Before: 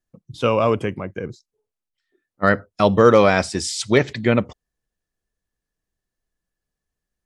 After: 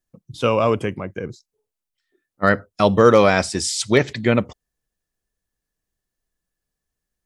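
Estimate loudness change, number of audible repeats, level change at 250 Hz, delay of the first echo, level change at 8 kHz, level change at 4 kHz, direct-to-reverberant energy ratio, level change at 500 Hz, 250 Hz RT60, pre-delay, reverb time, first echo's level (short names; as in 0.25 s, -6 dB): 0.0 dB, none, 0.0 dB, none, +3.0 dB, +1.5 dB, none, 0.0 dB, none, none, none, none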